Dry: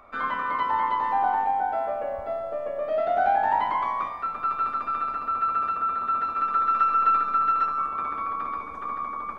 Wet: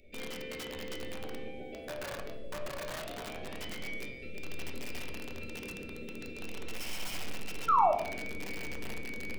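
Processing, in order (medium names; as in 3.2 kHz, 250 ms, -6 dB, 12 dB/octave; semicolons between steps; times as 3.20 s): elliptic band-stop 480–2400 Hz, stop band 80 dB; gain riding within 3 dB 2 s; integer overflow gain 36 dB; painted sound fall, 7.68–7.92 s, 580–1400 Hz -25 dBFS; on a send: reverberation RT60 0.70 s, pre-delay 5 ms, DRR 3 dB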